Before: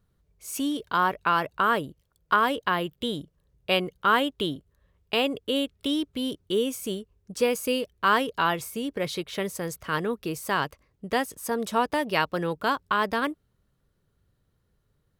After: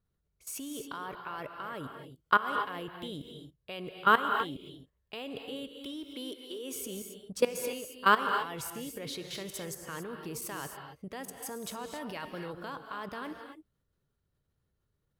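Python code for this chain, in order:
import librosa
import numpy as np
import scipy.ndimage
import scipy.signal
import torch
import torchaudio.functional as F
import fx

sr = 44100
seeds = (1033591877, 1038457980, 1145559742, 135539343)

y = fx.highpass(x, sr, hz=290.0, slope=24, at=(6.14, 6.73))
y = fx.level_steps(y, sr, step_db=20)
y = fx.rev_gated(y, sr, seeds[0], gate_ms=300, shape='rising', drr_db=5.5)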